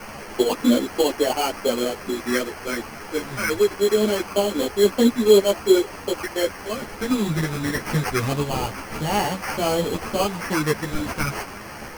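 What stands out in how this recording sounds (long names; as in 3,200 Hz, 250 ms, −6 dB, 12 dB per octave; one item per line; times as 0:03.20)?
a quantiser's noise floor 6 bits, dither triangular
phaser sweep stages 8, 0.24 Hz, lowest notch 670–2,600 Hz
aliases and images of a low sample rate 3,700 Hz, jitter 0%
a shimmering, thickened sound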